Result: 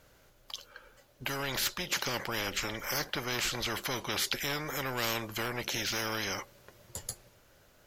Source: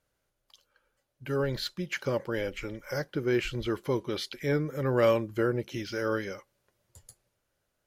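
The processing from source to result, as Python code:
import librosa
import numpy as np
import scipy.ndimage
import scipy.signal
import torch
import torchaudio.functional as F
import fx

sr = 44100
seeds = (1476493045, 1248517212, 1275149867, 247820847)

p1 = fx.peak_eq(x, sr, hz=9400.0, db=-9.0, octaves=0.24)
p2 = 10.0 ** (-23.5 / 20.0) * np.tanh(p1 / 10.0 ** (-23.5 / 20.0))
p3 = p1 + (p2 * librosa.db_to_amplitude(-4.0))
p4 = fx.spectral_comp(p3, sr, ratio=4.0)
y = p4 * librosa.db_to_amplitude(-3.0)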